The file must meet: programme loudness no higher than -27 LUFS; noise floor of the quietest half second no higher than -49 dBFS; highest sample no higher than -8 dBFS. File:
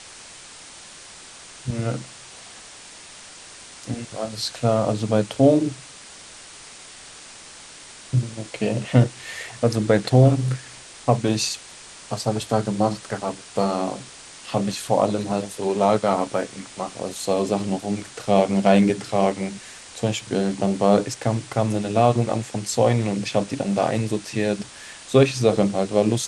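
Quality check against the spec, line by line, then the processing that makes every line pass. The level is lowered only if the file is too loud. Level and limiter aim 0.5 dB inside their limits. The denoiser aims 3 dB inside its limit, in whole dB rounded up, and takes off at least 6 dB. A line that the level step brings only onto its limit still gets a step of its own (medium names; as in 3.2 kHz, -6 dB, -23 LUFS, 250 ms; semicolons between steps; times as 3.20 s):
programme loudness -22.5 LUFS: fail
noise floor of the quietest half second -43 dBFS: fail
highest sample -3.5 dBFS: fail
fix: noise reduction 6 dB, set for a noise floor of -43 dBFS; trim -5 dB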